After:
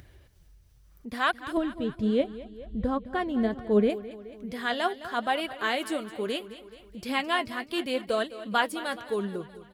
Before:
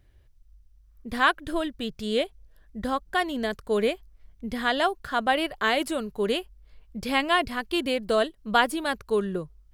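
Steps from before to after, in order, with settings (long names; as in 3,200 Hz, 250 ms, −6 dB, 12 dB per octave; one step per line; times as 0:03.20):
high-pass filter 80 Hz 12 dB per octave
upward compression, threshold −37 dBFS
0:01.57–0:03.90: spectral tilt −4 dB per octave
repeating echo 213 ms, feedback 56%, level −15 dB
flanger 0.73 Hz, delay 0.5 ms, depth 8.8 ms, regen +56%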